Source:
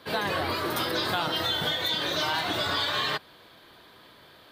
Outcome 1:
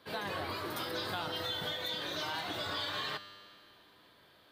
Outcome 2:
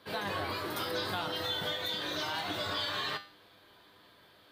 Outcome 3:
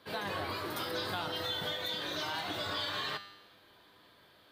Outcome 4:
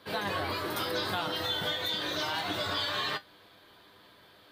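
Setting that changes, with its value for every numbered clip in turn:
tuned comb filter, decay: 2.1, 0.42, 0.97, 0.15 seconds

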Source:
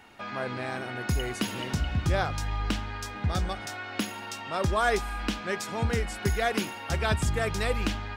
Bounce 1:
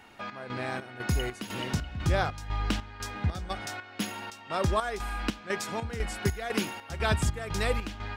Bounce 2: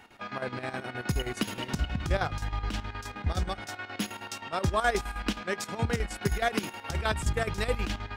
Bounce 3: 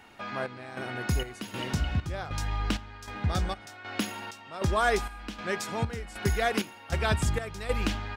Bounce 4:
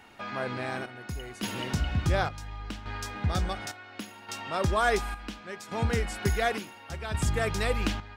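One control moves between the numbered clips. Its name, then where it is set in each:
square-wave tremolo, speed: 2, 9.5, 1.3, 0.7 Hertz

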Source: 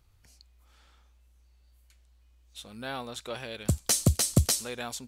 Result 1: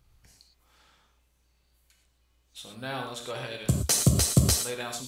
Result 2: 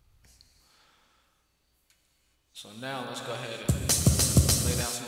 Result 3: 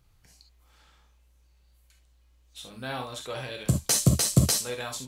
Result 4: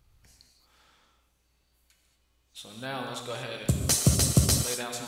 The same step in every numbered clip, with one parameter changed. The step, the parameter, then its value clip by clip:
reverb whose tail is shaped and stops, gate: 140, 450, 90, 260 milliseconds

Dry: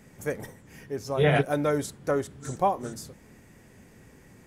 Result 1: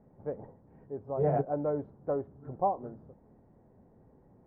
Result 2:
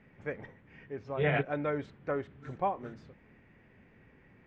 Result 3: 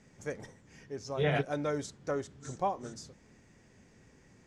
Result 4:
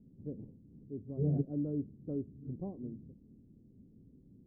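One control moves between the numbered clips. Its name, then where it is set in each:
transistor ladder low-pass, frequency: 990, 3,000, 7,600, 340 Hertz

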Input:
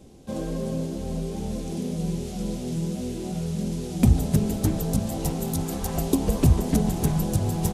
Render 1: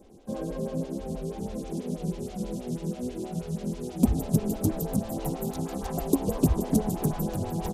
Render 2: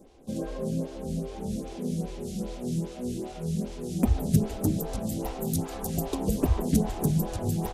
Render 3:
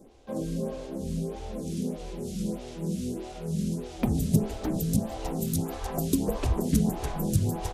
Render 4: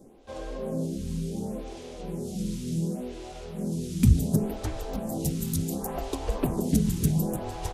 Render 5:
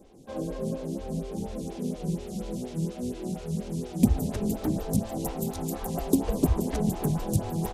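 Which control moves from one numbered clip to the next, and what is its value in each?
phaser with staggered stages, speed: 6.2, 2.5, 1.6, 0.69, 4.2 Hertz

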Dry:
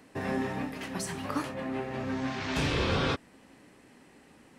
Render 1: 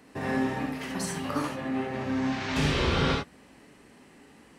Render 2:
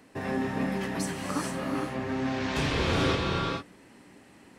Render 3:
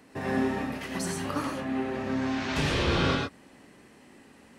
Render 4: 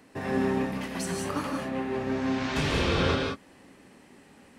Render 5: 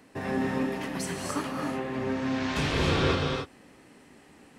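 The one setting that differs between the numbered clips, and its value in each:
reverb whose tail is shaped and stops, gate: 90, 480, 140, 210, 310 milliseconds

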